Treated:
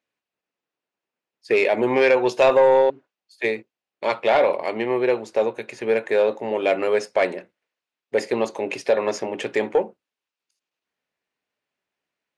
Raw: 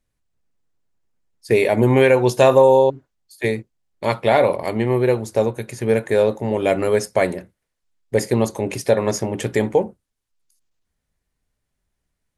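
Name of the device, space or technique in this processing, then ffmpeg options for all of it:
intercom: -af "highpass=360,lowpass=4.5k,equalizer=f=2.6k:t=o:w=0.32:g=5.5,asoftclip=type=tanh:threshold=-8dB"

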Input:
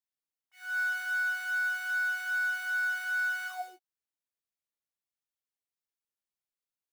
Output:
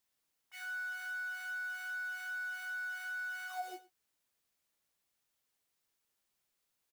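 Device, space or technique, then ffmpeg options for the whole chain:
de-esser from a sidechain: -filter_complex "[0:a]aecho=1:1:112:0.0841,asplit=2[a][b];[b]highpass=f=5.1k:p=1,apad=whole_len=310298[c];[a][c]sidechaincompress=threshold=-59dB:ratio=16:attack=2.1:release=75,volume=11dB"

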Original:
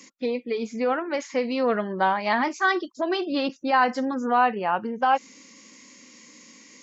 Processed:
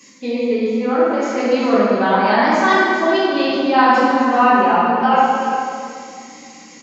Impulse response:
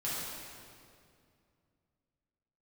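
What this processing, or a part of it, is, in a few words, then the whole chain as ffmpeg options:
stairwell: -filter_complex "[0:a]asettb=1/sr,asplit=3[a][b][c];[a]atrim=end=0.524[d];[b]atrim=start=0.52:end=1.23,asetpts=PTS-STARTPTS,afade=t=in:d=0.004:c=qsin,afade=t=out:st=0.706:d=0.004:c=qsin,highshelf=f=2.6k:g=-10[e];[c]atrim=start=1.226[f];[d][e]acrossfade=d=0.004:c1=hsin:c2=qsin[g];[g][f]acrossfade=d=0.004:c1=qsin:c2=hsin[h];[1:a]atrim=start_sample=2205[i];[h][i]afir=irnorm=-1:irlink=0,aecho=1:1:380:0.282,volume=3.5dB"

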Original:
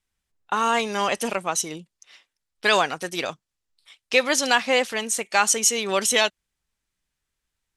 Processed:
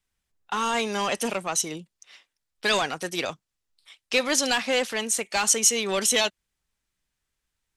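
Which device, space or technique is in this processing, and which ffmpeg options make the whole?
one-band saturation: -filter_complex "[0:a]acrossover=split=340|2900[a][b][c];[b]asoftclip=type=tanh:threshold=-22dB[d];[a][d][c]amix=inputs=3:normalize=0"

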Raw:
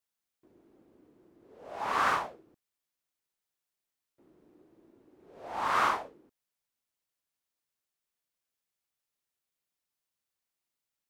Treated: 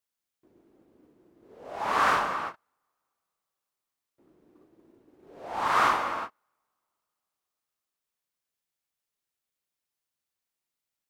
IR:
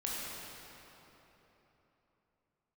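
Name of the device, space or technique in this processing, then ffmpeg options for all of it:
keyed gated reverb: -filter_complex "[0:a]asplit=3[a][b][c];[1:a]atrim=start_sample=2205[d];[b][d]afir=irnorm=-1:irlink=0[e];[c]apad=whole_len=489466[f];[e][f]sidechaingate=range=-41dB:threshold=-59dB:ratio=16:detection=peak,volume=-4dB[g];[a][g]amix=inputs=2:normalize=0"

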